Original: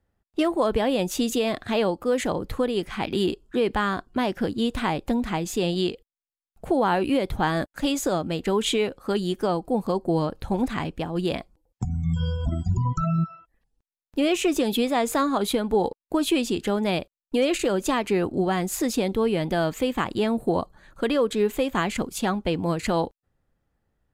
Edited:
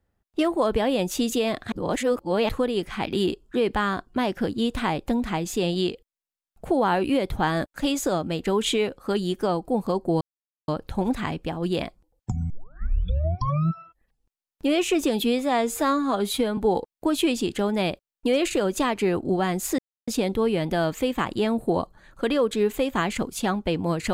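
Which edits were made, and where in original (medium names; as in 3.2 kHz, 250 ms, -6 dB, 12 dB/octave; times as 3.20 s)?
1.72–2.49 s: reverse
10.21 s: insert silence 0.47 s
12.03 s: tape start 1.18 s
14.77–15.66 s: stretch 1.5×
18.87 s: insert silence 0.29 s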